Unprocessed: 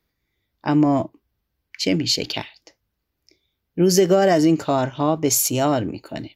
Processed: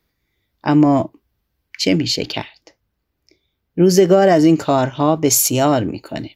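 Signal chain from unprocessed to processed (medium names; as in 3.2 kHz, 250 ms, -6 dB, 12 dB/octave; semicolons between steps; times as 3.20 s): 2.07–4.45 s: peaking EQ 13 kHz -6 dB 2.7 oct; trim +4.5 dB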